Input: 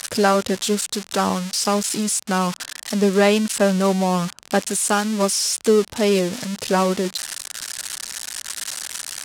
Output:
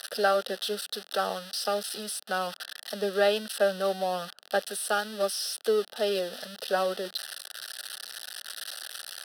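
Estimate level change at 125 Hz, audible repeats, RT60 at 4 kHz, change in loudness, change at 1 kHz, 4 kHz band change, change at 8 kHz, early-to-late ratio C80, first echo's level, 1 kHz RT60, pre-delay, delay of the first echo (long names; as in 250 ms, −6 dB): below −20 dB, no echo audible, no reverb audible, −9.5 dB, −8.0 dB, −6.5 dB, −14.5 dB, no reverb audible, no echo audible, no reverb audible, no reverb audible, no echo audible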